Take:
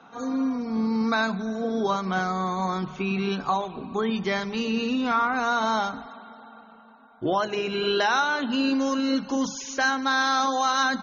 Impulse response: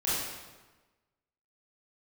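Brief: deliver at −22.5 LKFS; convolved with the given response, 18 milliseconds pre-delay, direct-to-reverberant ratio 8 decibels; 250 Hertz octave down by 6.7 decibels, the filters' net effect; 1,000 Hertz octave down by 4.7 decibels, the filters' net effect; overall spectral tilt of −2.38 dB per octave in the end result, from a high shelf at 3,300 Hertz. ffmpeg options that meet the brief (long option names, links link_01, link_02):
-filter_complex "[0:a]equalizer=frequency=250:width_type=o:gain=-7.5,equalizer=frequency=1000:width_type=o:gain=-6.5,highshelf=frequency=3300:gain=5,asplit=2[link_01][link_02];[1:a]atrim=start_sample=2205,adelay=18[link_03];[link_02][link_03]afir=irnorm=-1:irlink=0,volume=-17dB[link_04];[link_01][link_04]amix=inputs=2:normalize=0,volume=5dB"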